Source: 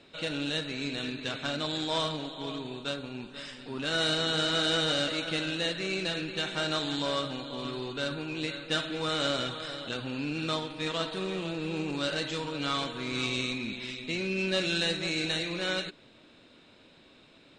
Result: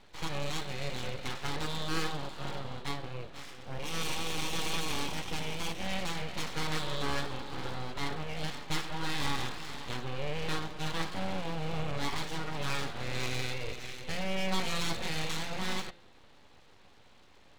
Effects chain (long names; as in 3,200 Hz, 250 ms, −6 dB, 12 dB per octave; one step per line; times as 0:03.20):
0:03.66–0:05.86: lower of the sound and its delayed copy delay 0.33 ms
high-shelf EQ 2,700 Hz −10.5 dB
full-wave rectification
notch filter 640 Hz, Q 12
hum removal 172.8 Hz, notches 28
level +2.5 dB